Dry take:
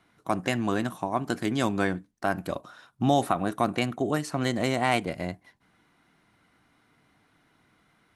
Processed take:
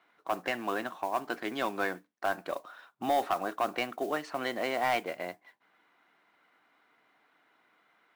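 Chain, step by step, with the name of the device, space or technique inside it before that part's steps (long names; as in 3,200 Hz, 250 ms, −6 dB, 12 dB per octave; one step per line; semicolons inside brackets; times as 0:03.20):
carbon microphone (band-pass filter 480–3,200 Hz; soft clipping −19 dBFS, distortion −14 dB; noise that follows the level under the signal 22 dB)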